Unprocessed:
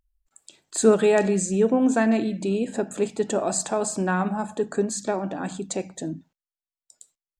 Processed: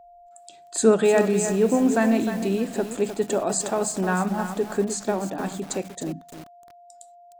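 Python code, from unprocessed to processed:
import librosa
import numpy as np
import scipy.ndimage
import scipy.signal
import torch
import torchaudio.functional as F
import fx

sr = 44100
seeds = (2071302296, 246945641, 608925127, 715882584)

y = x + 10.0 ** (-47.0 / 20.0) * np.sin(2.0 * np.pi * 700.0 * np.arange(len(x)) / sr)
y = fx.echo_crushed(y, sr, ms=306, feedback_pct=35, bits=6, wet_db=-8.5)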